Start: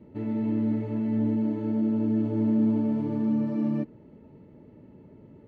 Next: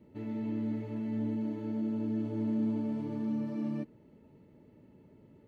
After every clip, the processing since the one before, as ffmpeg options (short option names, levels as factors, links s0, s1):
-af "highshelf=f=2400:g=9.5,volume=0.398"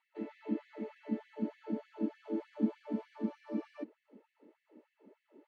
-af "aemphasis=mode=reproduction:type=bsi,afftfilt=real='re*gte(b*sr/1024,210*pow(1700/210,0.5+0.5*sin(2*PI*3.3*pts/sr)))':imag='im*gte(b*sr/1024,210*pow(1700/210,0.5+0.5*sin(2*PI*3.3*pts/sr)))':win_size=1024:overlap=0.75,volume=1.12"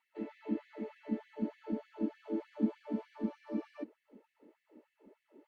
-ar 48000 -c:a libopus -b:a 64k